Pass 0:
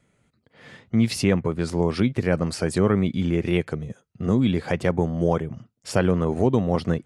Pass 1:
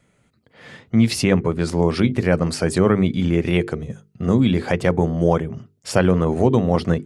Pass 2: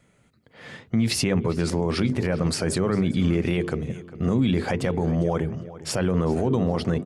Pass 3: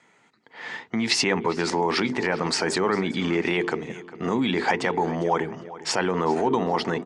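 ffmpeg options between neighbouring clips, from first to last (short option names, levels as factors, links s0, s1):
-af "bandreject=f=50:t=h:w=6,bandreject=f=100:t=h:w=6,bandreject=f=150:t=h:w=6,bandreject=f=200:t=h:w=6,bandreject=f=250:t=h:w=6,bandreject=f=300:t=h:w=6,bandreject=f=350:t=h:w=6,bandreject=f=400:t=h:w=6,bandreject=f=450:t=h:w=6,volume=1.68"
-filter_complex "[0:a]alimiter=limit=0.224:level=0:latency=1:release=34,asplit=2[s0][s1];[s1]adelay=402,lowpass=f=4000:p=1,volume=0.158,asplit=2[s2][s3];[s3]adelay=402,lowpass=f=4000:p=1,volume=0.35,asplit=2[s4][s5];[s5]adelay=402,lowpass=f=4000:p=1,volume=0.35[s6];[s0][s2][s4][s6]amix=inputs=4:normalize=0"
-af "highpass=340,equalizer=f=560:t=q:w=4:g=-8,equalizer=f=900:t=q:w=4:g=9,equalizer=f=1900:t=q:w=4:g=5,lowpass=f=7400:w=0.5412,lowpass=f=7400:w=1.3066,volume=1.68"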